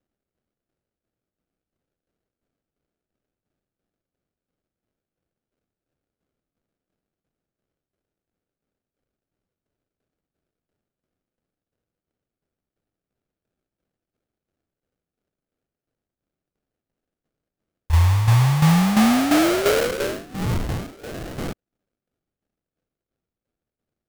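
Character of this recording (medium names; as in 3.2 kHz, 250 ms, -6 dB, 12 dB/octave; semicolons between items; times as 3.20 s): tremolo saw down 2.9 Hz, depth 65%; phasing stages 4, 0.27 Hz, lowest notch 190–1800 Hz; aliases and images of a low sample rate 1 kHz, jitter 20%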